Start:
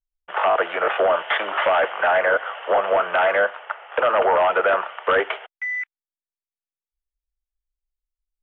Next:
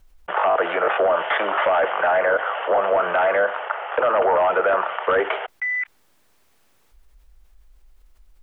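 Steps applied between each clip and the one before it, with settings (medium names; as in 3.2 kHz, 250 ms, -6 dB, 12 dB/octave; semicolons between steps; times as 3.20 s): treble shelf 2.4 kHz -11.5 dB; level flattener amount 50%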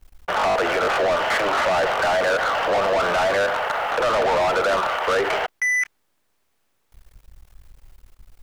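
peak limiter -13.5 dBFS, peak gain reduction 4.5 dB; waveshaping leveller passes 3; trim -3 dB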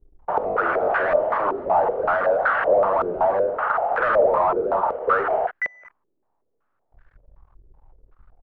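doubling 47 ms -10 dB; step-sequenced low-pass 5.3 Hz 390–1600 Hz; trim -5.5 dB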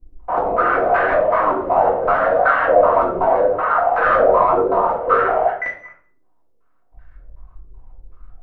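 reverberation RT60 0.50 s, pre-delay 3 ms, DRR -7 dB; trim -3 dB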